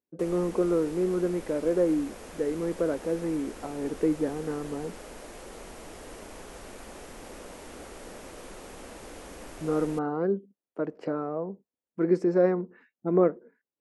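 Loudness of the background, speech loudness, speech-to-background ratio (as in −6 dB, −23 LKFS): −44.5 LKFS, −28.5 LKFS, 16.0 dB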